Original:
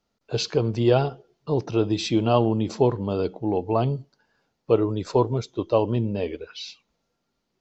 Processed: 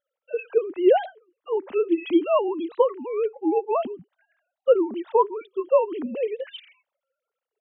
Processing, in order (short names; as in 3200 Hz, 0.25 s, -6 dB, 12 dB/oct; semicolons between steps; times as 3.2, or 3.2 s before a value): sine-wave speech; record warp 33 1/3 rpm, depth 250 cents